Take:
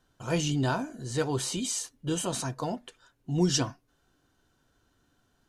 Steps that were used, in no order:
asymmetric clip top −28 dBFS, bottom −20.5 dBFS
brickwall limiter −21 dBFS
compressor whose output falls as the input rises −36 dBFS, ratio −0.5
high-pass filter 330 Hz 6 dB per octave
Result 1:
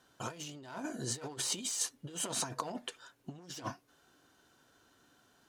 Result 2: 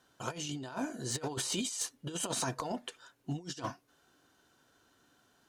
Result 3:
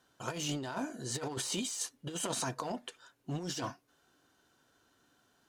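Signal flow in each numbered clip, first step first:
asymmetric clip, then brickwall limiter, then compressor whose output falls as the input rises, then high-pass filter
high-pass filter, then compressor whose output falls as the input rises, then asymmetric clip, then brickwall limiter
brickwall limiter, then asymmetric clip, then high-pass filter, then compressor whose output falls as the input rises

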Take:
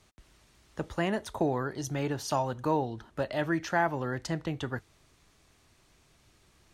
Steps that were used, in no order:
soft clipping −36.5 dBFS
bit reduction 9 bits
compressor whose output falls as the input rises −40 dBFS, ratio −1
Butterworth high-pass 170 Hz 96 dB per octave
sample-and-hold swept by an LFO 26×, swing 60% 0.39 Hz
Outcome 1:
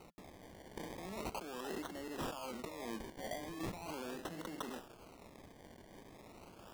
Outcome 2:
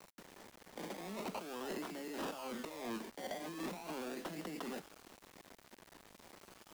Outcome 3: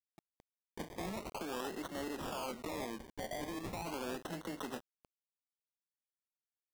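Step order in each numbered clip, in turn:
compressor whose output falls as the input rises, then soft clipping, then bit reduction, then Butterworth high-pass, then sample-and-hold swept by an LFO
compressor whose output falls as the input rises, then sample-and-hold swept by an LFO, then Butterworth high-pass, then bit reduction, then soft clipping
soft clipping, then Butterworth high-pass, then sample-and-hold swept by an LFO, then compressor whose output falls as the input rises, then bit reduction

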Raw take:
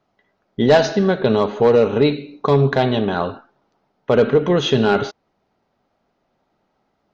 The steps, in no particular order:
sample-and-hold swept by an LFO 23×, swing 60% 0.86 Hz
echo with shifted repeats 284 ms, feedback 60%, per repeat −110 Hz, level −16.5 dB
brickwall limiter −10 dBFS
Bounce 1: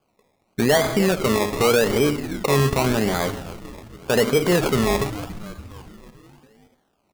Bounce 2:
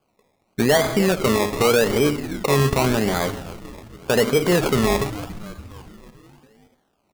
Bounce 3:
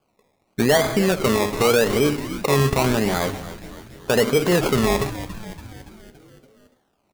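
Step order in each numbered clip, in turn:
echo with shifted repeats, then brickwall limiter, then sample-and-hold swept by an LFO
echo with shifted repeats, then sample-and-hold swept by an LFO, then brickwall limiter
sample-and-hold swept by an LFO, then echo with shifted repeats, then brickwall limiter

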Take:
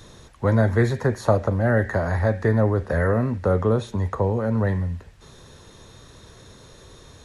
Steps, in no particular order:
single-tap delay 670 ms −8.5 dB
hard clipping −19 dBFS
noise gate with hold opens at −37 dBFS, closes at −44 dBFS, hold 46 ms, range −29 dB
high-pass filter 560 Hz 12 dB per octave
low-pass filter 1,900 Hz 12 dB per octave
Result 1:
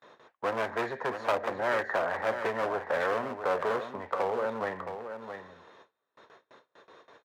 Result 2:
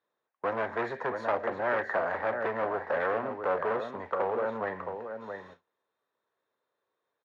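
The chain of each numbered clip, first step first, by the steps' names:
low-pass filter, then hard clipping, then single-tap delay, then noise gate with hold, then high-pass filter
single-tap delay, then hard clipping, then high-pass filter, then noise gate with hold, then low-pass filter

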